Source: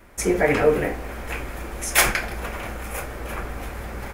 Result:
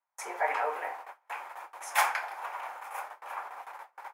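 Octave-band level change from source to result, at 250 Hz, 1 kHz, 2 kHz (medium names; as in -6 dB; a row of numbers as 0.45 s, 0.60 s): under -30 dB, -1.5 dB, -9.0 dB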